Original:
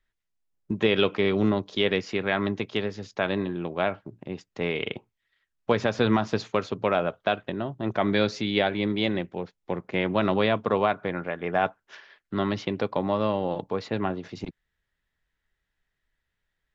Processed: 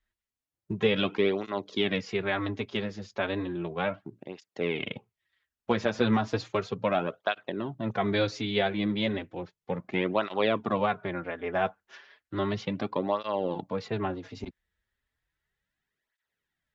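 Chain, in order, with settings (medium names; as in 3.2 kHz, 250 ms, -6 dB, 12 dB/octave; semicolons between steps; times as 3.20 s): cancelling through-zero flanger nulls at 0.34 Hz, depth 7.6 ms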